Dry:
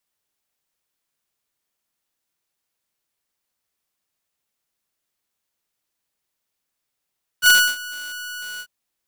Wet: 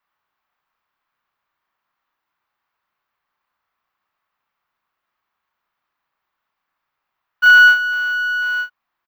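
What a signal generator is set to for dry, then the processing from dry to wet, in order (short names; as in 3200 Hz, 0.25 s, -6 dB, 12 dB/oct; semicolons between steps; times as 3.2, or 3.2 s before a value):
ADSR saw 1470 Hz, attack 56 ms, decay 0.277 s, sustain -21.5 dB, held 1.18 s, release 65 ms -6 dBFS
EQ curve 500 Hz 0 dB, 1100 Hz +15 dB, 4700 Hz -6 dB, 10000 Hz -24 dB, 15000 Hz -5 dB; limiter -6.5 dBFS; doubler 34 ms -6 dB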